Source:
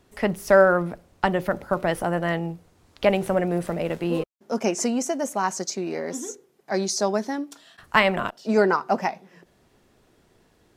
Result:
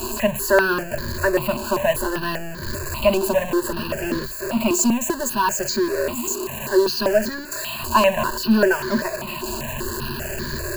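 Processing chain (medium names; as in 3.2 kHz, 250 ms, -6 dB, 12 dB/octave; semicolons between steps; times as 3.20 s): jump at every zero crossing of -20.5 dBFS; rippled EQ curve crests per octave 1.4, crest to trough 17 dB; in parallel at -11 dB: small samples zeroed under -15 dBFS; on the sum: stepped phaser 5.1 Hz 520–2700 Hz; trim -2.5 dB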